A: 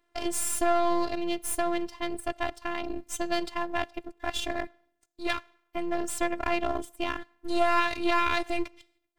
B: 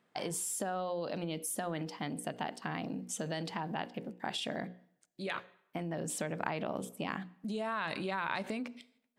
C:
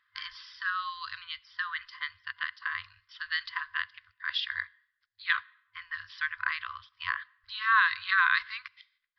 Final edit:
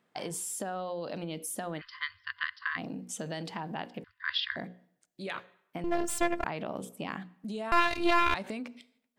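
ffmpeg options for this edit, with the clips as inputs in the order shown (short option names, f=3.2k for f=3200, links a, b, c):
-filter_complex "[2:a]asplit=2[a][b];[0:a]asplit=2[c][d];[1:a]asplit=5[e][f][g][h][i];[e]atrim=end=1.82[j];[a]atrim=start=1.78:end=2.79[k];[f]atrim=start=2.75:end=4.042[l];[b]atrim=start=4.038:end=4.562[m];[g]atrim=start=4.558:end=5.842[n];[c]atrim=start=5.838:end=6.442[o];[h]atrim=start=6.438:end=7.722[p];[d]atrim=start=7.718:end=8.342[q];[i]atrim=start=8.338[r];[j][k]acrossfade=d=0.04:c1=tri:c2=tri[s];[s][l]acrossfade=d=0.04:c1=tri:c2=tri[t];[t][m]acrossfade=d=0.004:c1=hsin:c2=hsin[u];[u][n]acrossfade=d=0.004:c1=hsin:c2=hsin[v];[v][o]acrossfade=d=0.004:c1=hsin:c2=hsin[w];[w][p]acrossfade=d=0.004:c1=hsin:c2=hsin[x];[x][q]acrossfade=d=0.004:c1=hsin:c2=hsin[y];[y][r]acrossfade=d=0.004:c1=hsin:c2=hsin"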